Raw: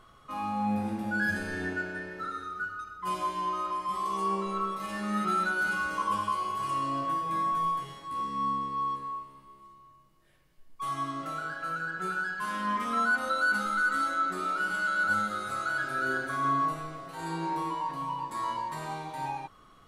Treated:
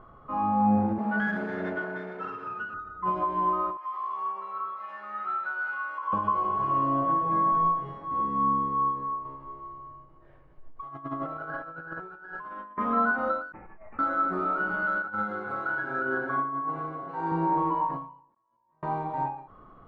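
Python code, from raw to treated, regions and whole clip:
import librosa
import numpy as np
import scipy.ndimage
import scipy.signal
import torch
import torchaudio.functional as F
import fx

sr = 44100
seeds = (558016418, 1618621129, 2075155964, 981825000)

y = fx.chain(x, sr, fx.lower_of_two(delay_ms=4.7),
    fx.highpass(hz=180.0, slope=12),
    fx.high_shelf(hz=5100.0, db=7.0), at=(0.98, 2.74))
y = fx.chain(y, sr, fx.highpass(hz=1400.0, slope=12),
    fx.high_shelf(hz=3900.0, db=-5.5), at=(3.77, 6.13))
y = fx.chain(y, sr, fx.peak_eq(hz=200.0, db=-14.5, octaves=0.3),
    fx.over_compress(threshold_db=-39.0, ratio=-0.5), at=(9.25, 12.78))
y = fx.chain(y, sr, fx.cheby2_bandstop(low_hz=420.0, high_hz=1700.0, order=4, stop_db=80),
    fx.over_compress(threshold_db=-50.0, ratio=-1.0),
    fx.resample_bad(factor=8, down='none', up='filtered'), at=(13.52, 13.99))
y = fx.chain(y, sr, fx.low_shelf(hz=210.0, db=-9.5),
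    fx.notch_comb(f0_hz=630.0),
    fx.over_compress(threshold_db=-31.0, ratio=-0.5), at=(15.02, 17.32))
y = fx.chain(y, sr, fx.over_compress(threshold_db=-37.0, ratio=-1.0),
    fx.gate_flip(shuts_db=-32.0, range_db=-41), at=(18.34, 18.83))
y = scipy.signal.sosfilt(scipy.signal.cheby1(2, 1.0, 950.0, 'lowpass', fs=sr, output='sos'), y)
y = fx.end_taper(y, sr, db_per_s=100.0)
y = F.gain(torch.from_numpy(y), 7.5).numpy()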